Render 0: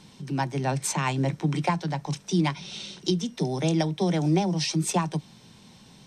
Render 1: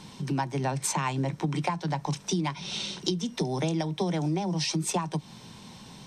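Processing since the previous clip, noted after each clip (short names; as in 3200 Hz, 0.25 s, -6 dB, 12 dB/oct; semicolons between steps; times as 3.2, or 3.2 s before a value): bell 980 Hz +4.5 dB 0.48 oct; compressor, threshold -30 dBFS, peak gain reduction 12.5 dB; gain +4.5 dB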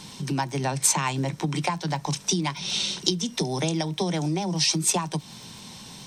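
high shelf 3000 Hz +9 dB; crackle 11/s -37 dBFS; gain +1.5 dB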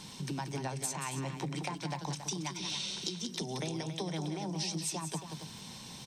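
compressor, threshold -29 dBFS, peak gain reduction 12 dB; on a send: loudspeakers at several distances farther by 62 m -8 dB, 95 m -10 dB; on the sum: gain -5.5 dB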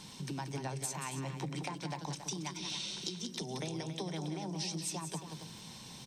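on a send at -12.5 dB: brick-wall FIR band-stop 610–12000 Hz + reverb RT60 1.3 s, pre-delay 83 ms; on the sum: gain -2.5 dB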